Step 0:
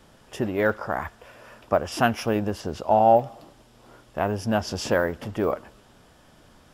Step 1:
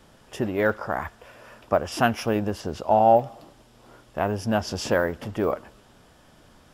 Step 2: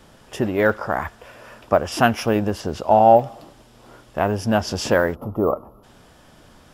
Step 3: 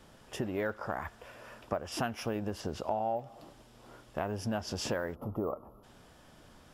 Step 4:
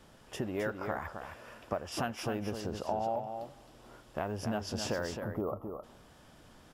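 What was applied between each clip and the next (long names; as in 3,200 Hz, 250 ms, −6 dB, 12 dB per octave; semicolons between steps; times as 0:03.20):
no processing that can be heard
gain on a spectral selection 0:05.15–0:05.83, 1,400–11,000 Hz −25 dB; level +4.5 dB
downward compressor 4 to 1, threshold −24 dBFS, peak gain reduction 14.5 dB; level −7.5 dB
single-tap delay 264 ms −7 dB; level −1 dB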